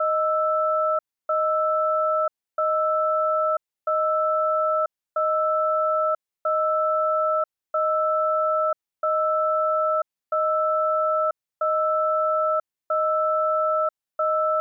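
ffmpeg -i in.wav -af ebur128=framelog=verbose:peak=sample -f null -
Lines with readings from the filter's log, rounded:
Integrated loudness:
  I:         -22.9 LUFS
  Threshold: -32.9 LUFS
Loudness range:
  LRA:         0.6 LU
  Threshold: -42.9 LUFS
  LRA low:   -23.2 LUFS
  LRA high:  -22.7 LUFS
Sample peak:
  Peak:      -15.9 dBFS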